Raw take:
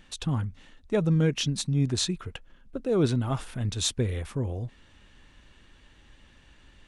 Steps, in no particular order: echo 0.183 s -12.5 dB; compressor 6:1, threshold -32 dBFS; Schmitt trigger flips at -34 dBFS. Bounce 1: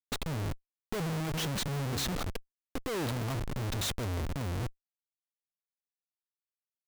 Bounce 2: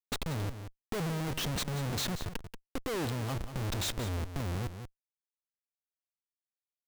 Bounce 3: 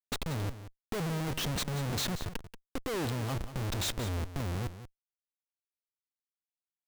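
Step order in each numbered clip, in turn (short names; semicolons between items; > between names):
echo > Schmitt trigger > compressor; Schmitt trigger > echo > compressor; Schmitt trigger > compressor > echo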